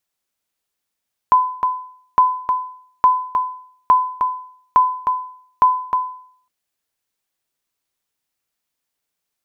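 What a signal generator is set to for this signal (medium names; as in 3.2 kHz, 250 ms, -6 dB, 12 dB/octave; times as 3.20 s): sonar ping 1.01 kHz, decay 0.58 s, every 0.86 s, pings 6, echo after 0.31 s, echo -6.5 dB -5 dBFS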